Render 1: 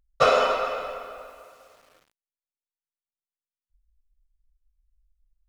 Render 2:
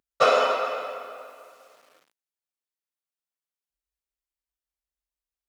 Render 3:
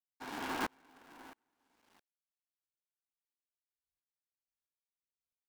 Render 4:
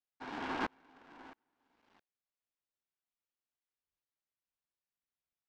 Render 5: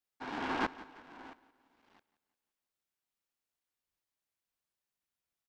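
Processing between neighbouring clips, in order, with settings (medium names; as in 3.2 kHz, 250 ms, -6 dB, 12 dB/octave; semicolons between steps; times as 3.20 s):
high-pass 230 Hz 12 dB/octave
cycle switcher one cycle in 2, inverted; sawtooth tremolo in dB swelling 1.5 Hz, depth 36 dB; trim -6 dB
distance through air 150 m; trim +1 dB
feedback delay 174 ms, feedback 47%, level -17.5 dB; trim +3 dB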